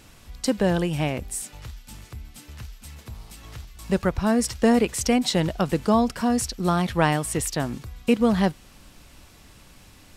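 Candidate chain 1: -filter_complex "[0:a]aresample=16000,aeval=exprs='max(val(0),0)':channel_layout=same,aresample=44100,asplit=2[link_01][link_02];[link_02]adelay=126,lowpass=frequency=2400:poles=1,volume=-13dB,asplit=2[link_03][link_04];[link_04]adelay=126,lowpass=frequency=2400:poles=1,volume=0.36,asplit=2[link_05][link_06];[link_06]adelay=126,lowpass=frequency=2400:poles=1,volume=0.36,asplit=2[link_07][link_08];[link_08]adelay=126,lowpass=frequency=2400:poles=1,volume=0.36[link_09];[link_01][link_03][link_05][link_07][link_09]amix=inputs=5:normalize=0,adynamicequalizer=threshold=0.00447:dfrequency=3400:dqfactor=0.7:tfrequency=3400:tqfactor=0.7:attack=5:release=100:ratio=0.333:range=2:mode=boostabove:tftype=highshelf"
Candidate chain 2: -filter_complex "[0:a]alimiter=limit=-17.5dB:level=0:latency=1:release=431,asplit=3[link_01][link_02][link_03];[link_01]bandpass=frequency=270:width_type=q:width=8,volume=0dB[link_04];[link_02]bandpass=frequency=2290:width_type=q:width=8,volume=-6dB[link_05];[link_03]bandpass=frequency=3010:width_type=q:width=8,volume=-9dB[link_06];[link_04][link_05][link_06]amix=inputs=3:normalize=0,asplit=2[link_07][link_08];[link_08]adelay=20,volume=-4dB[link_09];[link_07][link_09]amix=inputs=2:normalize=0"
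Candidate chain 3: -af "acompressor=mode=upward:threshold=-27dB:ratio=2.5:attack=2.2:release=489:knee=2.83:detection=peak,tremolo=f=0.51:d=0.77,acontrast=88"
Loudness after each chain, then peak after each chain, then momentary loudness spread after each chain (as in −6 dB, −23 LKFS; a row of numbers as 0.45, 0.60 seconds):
−28.0, −38.0, −21.5 LKFS; −6.0, −21.5, −4.5 dBFS; 21, 22, 19 LU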